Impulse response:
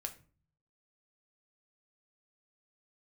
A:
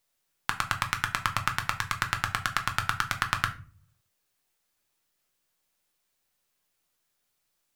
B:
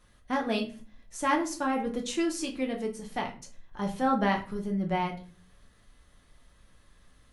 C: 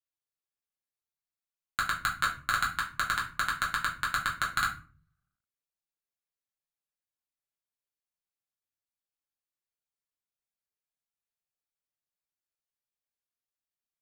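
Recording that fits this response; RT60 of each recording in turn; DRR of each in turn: A; 0.40, 0.40, 0.40 seconds; 4.5, 0.5, −4.5 decibels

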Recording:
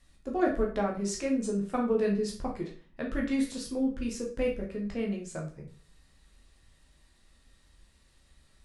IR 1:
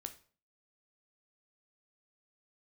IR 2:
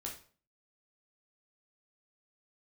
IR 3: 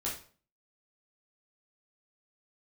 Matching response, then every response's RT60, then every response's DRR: 2; 0.45, 0.45, 0.45 seconds; 7.5, −1.5, −6.0 decibels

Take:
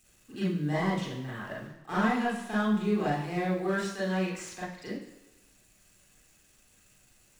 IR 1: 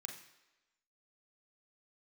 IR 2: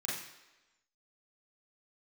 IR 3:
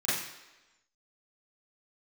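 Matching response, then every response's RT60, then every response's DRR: 2; 1.1, 1.1, 1.1 seconds; 2.0, −7.0, −12.5 decibels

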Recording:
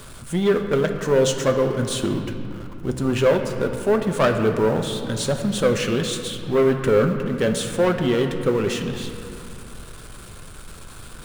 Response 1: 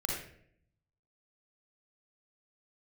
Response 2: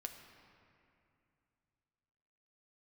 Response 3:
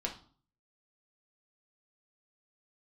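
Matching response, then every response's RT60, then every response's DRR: 2; 0.65, 2.6, 0.45 seconds; −1.5, 4.0, −0.5 decibels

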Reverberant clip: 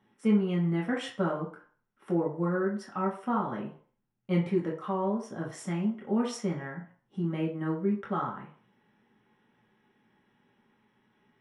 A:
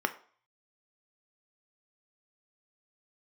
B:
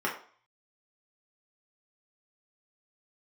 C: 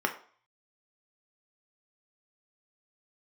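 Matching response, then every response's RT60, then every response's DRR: B; 0.50, 0.50, 0.50 seconds; 7.5, −4.5, 3.0 decibels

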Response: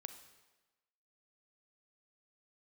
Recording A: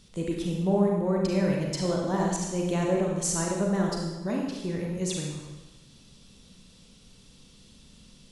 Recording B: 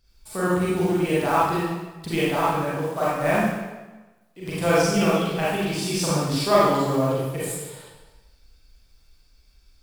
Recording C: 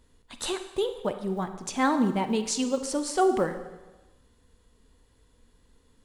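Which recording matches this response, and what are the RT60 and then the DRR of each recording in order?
C; 1.2, 1.2, 1.2 seconds; −1.0, −9.0, 8.5 decibels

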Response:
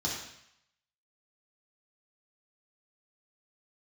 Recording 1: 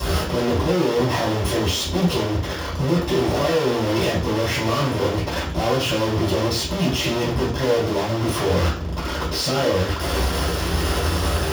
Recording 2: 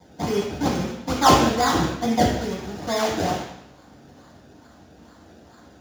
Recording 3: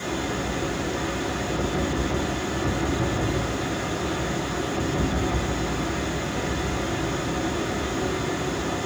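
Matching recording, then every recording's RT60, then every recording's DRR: 2; 0.45, 0.75, 1.2 seconds; −10.5, −4.5, −8.0 decibels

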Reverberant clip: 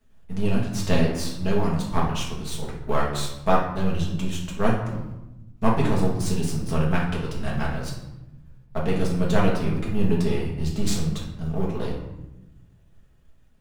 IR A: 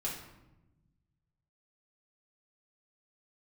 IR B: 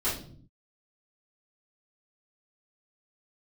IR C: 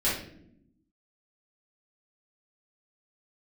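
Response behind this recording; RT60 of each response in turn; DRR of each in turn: A; 1.0, 0.55, 0.70 seconds; −5.0, −13.0, −10.5 decibels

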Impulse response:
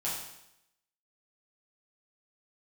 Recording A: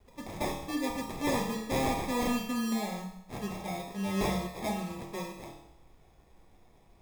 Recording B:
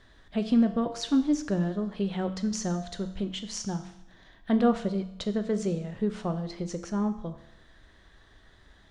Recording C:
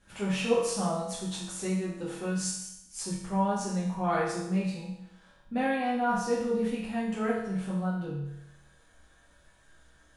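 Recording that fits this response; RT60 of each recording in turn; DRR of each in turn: C; 0.80, 0.80, 0.80 seconds; −2.0, 7.5, −8.0 decibels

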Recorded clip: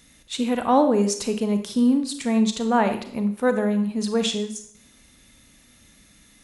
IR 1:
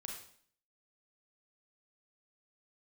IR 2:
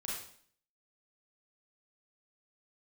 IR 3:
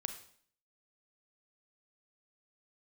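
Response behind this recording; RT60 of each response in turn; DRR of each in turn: 3; 0.55, 0.55, 0.55 seconds; 0.0, −5.5, 7.0 decibels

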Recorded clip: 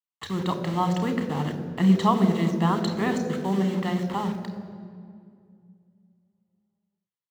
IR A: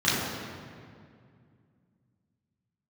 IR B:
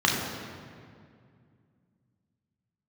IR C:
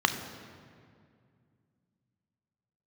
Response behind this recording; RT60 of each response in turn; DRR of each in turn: C; 2.2, 2.2, 2.2 seconds; −10.5, −2.5, 7.0 decibels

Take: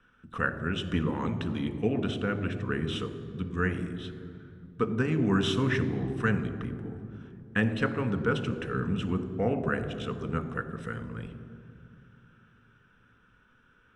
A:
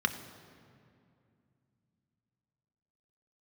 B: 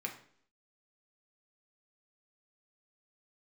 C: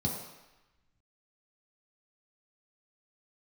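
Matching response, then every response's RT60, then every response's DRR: A; 2.5, 0.60, 1.0 seconds; 7.5, 1.0, −3.5 decibels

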